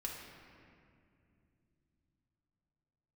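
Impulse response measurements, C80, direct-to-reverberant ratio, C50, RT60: 3.5 dB, -2.0 dB, 2.0 dB, 2.5 s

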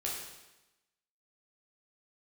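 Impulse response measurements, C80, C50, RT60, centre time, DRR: 4.5 dB, 2.0 dB, 1.0 s, 58 ms, -4.0 dB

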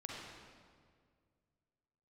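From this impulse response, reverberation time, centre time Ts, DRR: 2.0 s, 0.11 s, -3.0 dB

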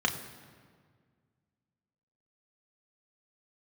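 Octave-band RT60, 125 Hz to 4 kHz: 2.5, 2.3, 1.9, 1.7, 1.5, 1.2 s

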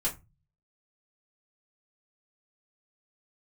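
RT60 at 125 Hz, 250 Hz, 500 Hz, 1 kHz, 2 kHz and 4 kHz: 0.75, 0.40, 0.25, 0.25, 0.20, 0.15 s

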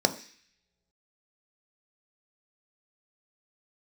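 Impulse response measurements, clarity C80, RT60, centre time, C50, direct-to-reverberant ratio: 17.5 dB, not exponential, 7 ms, 14.5 dB, 7.0 dB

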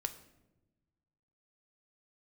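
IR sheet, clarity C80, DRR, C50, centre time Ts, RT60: 15.5 dB, 8.5 dB, 13.0 dB, 8 ms, 1.0 s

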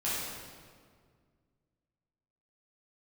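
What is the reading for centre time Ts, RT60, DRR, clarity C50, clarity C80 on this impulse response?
0.118 s, 1.9 s, -10.5 dB, -3.0 dB, 0.0 dB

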